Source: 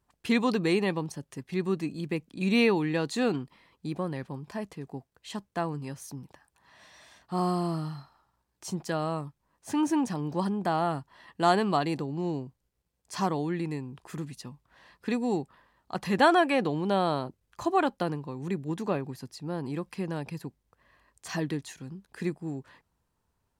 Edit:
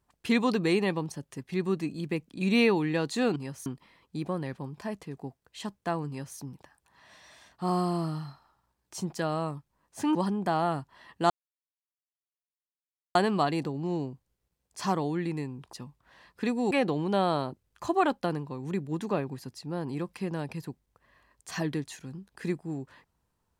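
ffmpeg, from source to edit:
-filter_complex "[0:a]asplit=7[a][b][c][d][e][f][g];[a]atrim=end=3.362[h];[b]atrim=start=5.778:end=6.082[i];[c]atrim=start=3.358:end=9.852[j];[d]atrim=start=10.338:end=11.49,asetpts=PTS-STARTPTS,afade=t=out:st=1.148:d=0.004:c=hsin,apad=pad_dur=1.85[k];[e]atrim=start=11.49:end=14.072,asetpts=PTS-STARTPTS,afade=t=in:d=0.004:c=hsin[l];[f]atrim=start=14.378:end=15.362[m];[g]atrim=start=16.478[n];[h][i]acrossfade=d=0.004:c1=hsin:c2=hsin[o];[o][j]acrossfade=d=0.004:c1=hsin:c2=hsin[p];[k][l]concat=n=2:v=0:a=1[q];[p][q]acrossfade=d=0.004:c1=hsin:c2=hsin[r];[r][m]acrossfade=d=0.004:c1=hsin:c2=hsin[s];[s][n]acrossfade=d=0.004:c1=hsin:c2=hsin"

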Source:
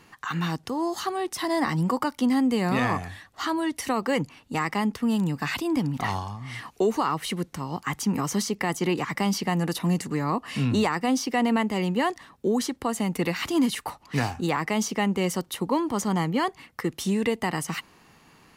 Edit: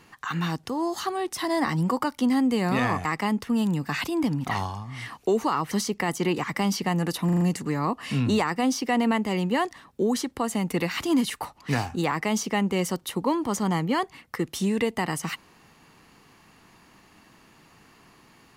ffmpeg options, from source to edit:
-filter_complex "[0:a]asplit=7[a][b][c][d][e][f][g];[a]atrim=end=3.052[h];[b]atrim=start=4.578:end=7.242[i];[c]atrim=start=8.318:end=9.902[j];[d]atrim=start=9.858:end=9.902[k];[e]atrim=start=9.858:end=9.902[l];[f]atrim=start=9.858:end=9.902[m];[g]atrim=start=9.858[n];[h][i]acrossfade=d=0.004:c1=hsin:c2=hsin[o];[o][j]acrossfade=d=0.004:c1=hsin:c2=hsin[p];[p][k]acrossfade=d=0.004:c1=hsin:c2=hsin[q];[q][l]acrossfade=d=0.004:c1=hsin:c2=hsin[r];[r][m]acrossfade=d=0.004:c1=hsin:c2=hsin[s];[s][n]acrossfade=d=0.004:c1=hsin:c2=hsin"

